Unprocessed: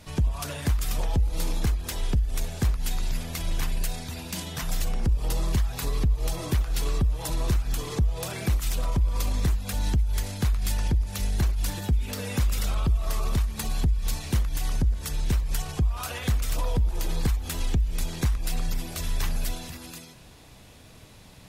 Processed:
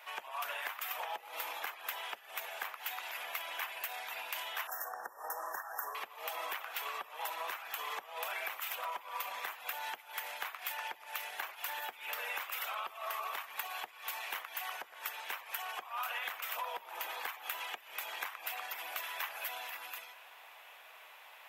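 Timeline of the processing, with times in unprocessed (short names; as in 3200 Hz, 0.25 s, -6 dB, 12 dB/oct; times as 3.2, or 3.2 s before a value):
4.67–5.95 brick-wall FIR band-stop 1900–5200 Hz
whole clip: HPF 760 Hz 24 dB/oct; band shelf 6400 Hz -15.5 dB; compressor 4:1, threshold -39 dBFS; gain +3.5 dB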